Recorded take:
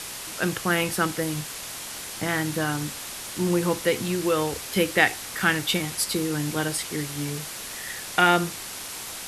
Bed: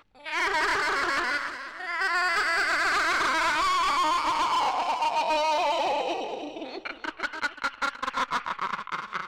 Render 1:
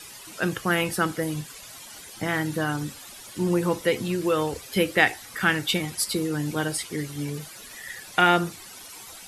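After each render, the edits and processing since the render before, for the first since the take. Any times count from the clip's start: denoiser 13 dB, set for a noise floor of -37 dBFS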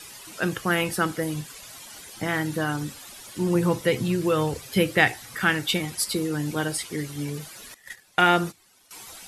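3.55–5.4 bell 130 Hz +9.5 dB; 7.74–8.91 gate -38 dBFS, range -16 dB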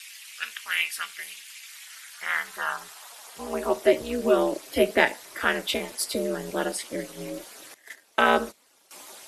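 high-pass sweep 2300 Hz -> 450 Hz, 1.55–4.05; ring modulator 120 Hz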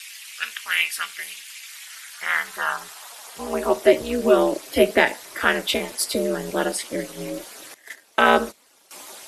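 gain +4.5 dB; limiter -1 dBFS, peak gain reduction 2.5 dB

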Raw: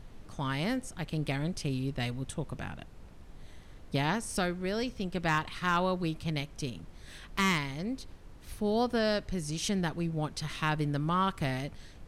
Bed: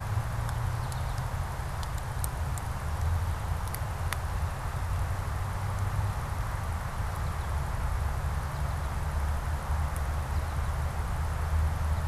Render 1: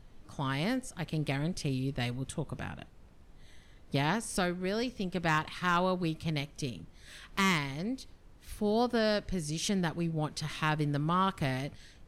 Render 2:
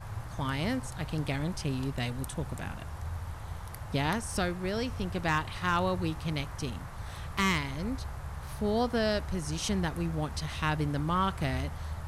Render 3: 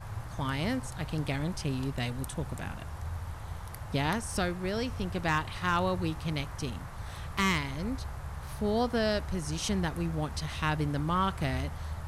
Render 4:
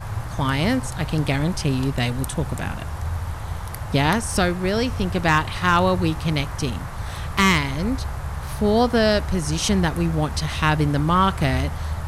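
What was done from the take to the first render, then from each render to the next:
noise print and reduce 6 dB
add bed -8.5 dB
nothing audible
gain +10.5 dB

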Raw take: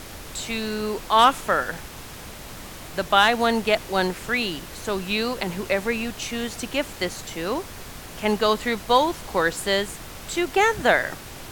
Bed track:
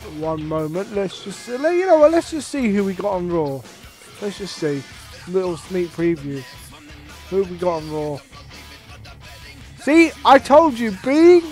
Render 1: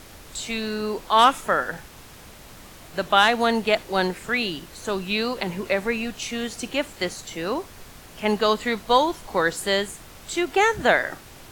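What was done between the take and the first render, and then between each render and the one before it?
noise print and reduce 6 dB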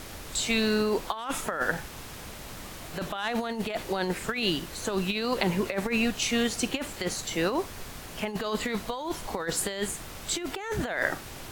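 limiter -13 dBFS, peak gain reduction 9 dB; negative-ratio compressor -27 dBFS, ratio -0.5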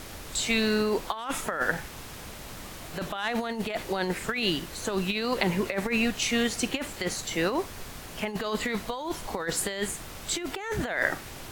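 dynamic EQ 2000 Hz, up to +3 dB, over -43 dBFS, Q 2.9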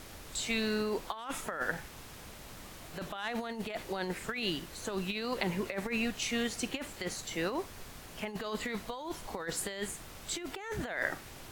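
gain -7 dB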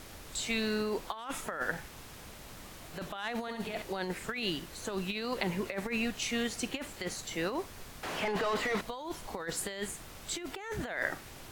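3.41–3.82 flutter echo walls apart 11.5 m, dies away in 0.76 s; 8.03–8.81 overdrive pedal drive 29 dB, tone 1500 Hz, clips at -22.5 dBFS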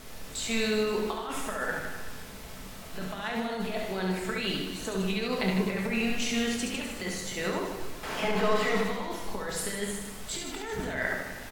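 reverse bouncing-ball echo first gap 70 ms, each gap 1.2×, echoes 5; shoebox room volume 400 m³, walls furnished, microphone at 1.5 m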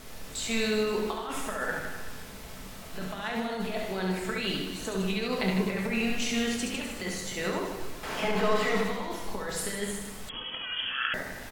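10.29–11.14 inverted band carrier 3300 Hz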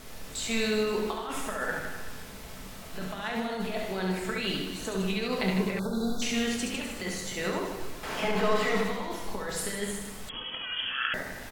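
5.79–6.22 brick-wall FIR band-stop 1600–3400 Hz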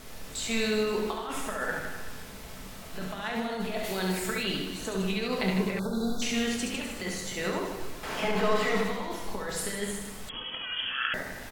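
3.83–4.42 high shelf 3300 Hz -> 6200 Hz +11.5 dB

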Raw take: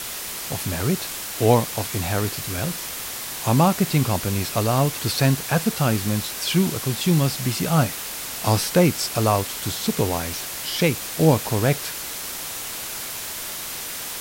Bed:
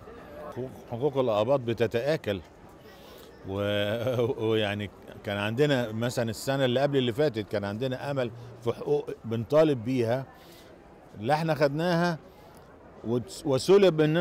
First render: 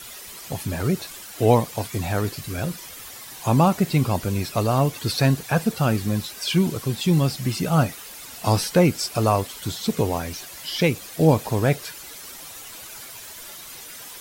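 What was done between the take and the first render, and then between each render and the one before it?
denoiser 11 dB, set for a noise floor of -32 dBFS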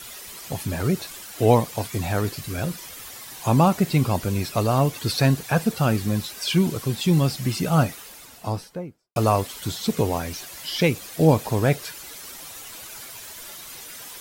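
7.79–9.16 studio fade out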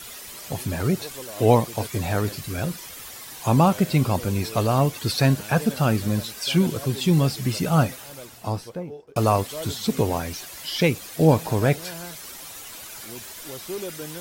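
add bed -13.5 dB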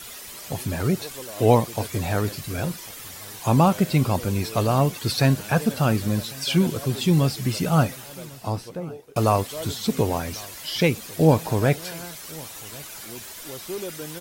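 echo 1.098 s -23.5 dB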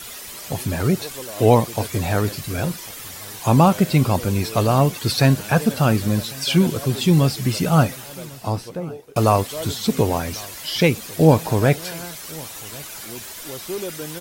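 gain +3.5 dB; limiter -2 dBFS, peak gain reduction 1.5 dB

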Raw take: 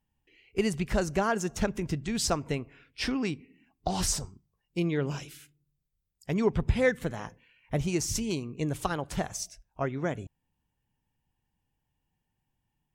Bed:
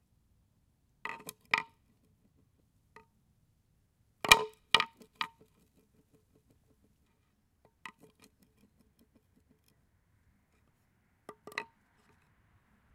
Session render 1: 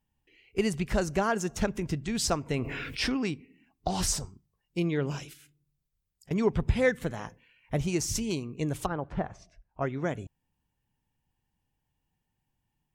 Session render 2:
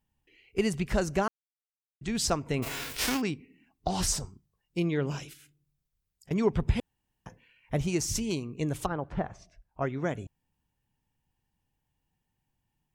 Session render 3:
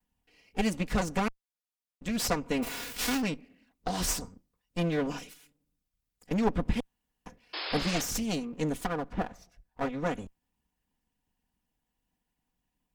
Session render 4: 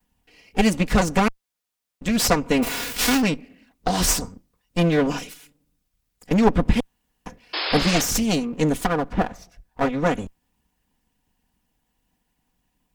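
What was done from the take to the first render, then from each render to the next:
2.54–3.17 fast leveller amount 70%; 5.33–6.31 compressor, threshold -51 dBFS; 8.85–9.81 LPF 1300 Hz -> 2200 Hz
1.28–2.01 mute; 2.62–3.2 spectral whitening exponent 0.3; 6.8–7.26 room tone
minimum comb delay 4.1 ms; 7.53–8.02 painted sound noise 290–5300 Hz -36 dBFS
gain +10 dB

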